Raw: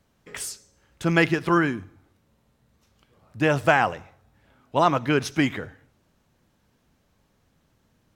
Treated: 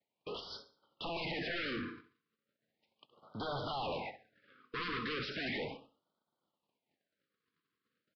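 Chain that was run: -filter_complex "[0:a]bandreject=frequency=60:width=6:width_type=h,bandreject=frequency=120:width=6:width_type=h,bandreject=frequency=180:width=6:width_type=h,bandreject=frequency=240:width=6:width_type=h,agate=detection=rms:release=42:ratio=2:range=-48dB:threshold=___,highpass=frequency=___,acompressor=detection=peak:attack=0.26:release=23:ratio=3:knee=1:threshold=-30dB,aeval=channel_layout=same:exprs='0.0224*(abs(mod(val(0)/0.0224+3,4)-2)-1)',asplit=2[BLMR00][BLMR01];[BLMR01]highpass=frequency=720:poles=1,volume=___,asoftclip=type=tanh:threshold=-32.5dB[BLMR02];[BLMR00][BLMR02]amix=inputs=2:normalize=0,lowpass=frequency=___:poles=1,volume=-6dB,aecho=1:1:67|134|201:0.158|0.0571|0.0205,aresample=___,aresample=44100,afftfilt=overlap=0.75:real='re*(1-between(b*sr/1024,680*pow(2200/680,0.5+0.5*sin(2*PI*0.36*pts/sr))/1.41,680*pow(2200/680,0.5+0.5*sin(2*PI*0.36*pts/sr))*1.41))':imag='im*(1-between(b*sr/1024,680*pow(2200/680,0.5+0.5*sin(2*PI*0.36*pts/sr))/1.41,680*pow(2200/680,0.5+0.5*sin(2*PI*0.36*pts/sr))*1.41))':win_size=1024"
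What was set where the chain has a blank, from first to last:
-50dB, 140, 23dB, 3.7k, 11025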